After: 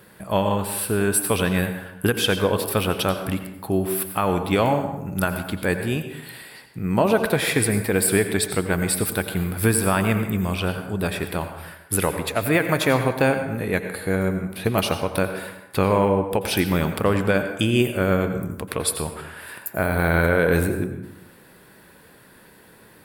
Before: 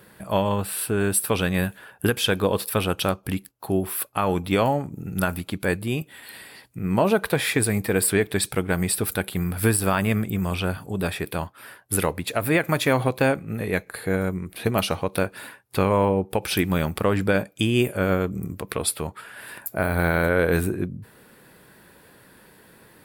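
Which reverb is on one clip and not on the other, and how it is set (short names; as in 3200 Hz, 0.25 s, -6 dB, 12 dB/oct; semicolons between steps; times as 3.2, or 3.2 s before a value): plate-style reverb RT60 0.91 s, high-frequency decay 0.6×, pre-delay 75 ms, DRR 7.5 dB; gain +1 dB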